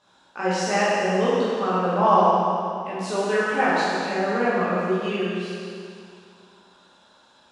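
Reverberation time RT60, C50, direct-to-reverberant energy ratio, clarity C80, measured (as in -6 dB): 2.4 s, -3.5 dB, -10.0 dB, -2.0 dB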